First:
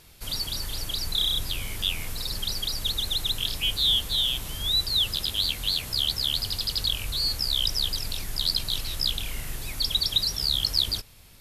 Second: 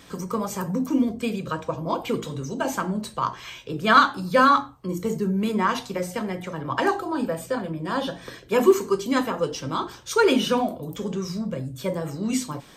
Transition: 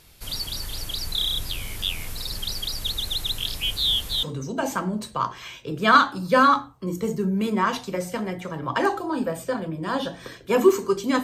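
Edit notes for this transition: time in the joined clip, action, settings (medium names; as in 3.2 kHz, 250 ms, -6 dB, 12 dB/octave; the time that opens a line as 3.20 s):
first
4.23 s: go over to second from 2.25 s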